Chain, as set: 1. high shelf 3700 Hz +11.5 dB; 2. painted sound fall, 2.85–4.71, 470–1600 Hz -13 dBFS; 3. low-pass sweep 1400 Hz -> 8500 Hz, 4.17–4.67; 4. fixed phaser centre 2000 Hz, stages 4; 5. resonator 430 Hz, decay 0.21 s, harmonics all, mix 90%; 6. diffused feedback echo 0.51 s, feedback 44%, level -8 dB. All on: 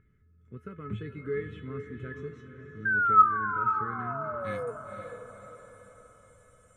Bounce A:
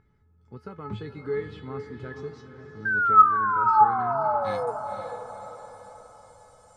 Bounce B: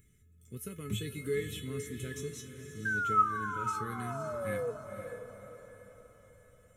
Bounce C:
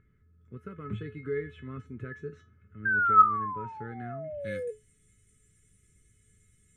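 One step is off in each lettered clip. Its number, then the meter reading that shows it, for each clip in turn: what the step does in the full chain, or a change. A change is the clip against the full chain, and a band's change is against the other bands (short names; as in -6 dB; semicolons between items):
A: 4, 1 kHz band +5.0 dB; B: 3, 1 kHz band -7.0 dB; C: 6, echo-to-direct -7.0 dB to none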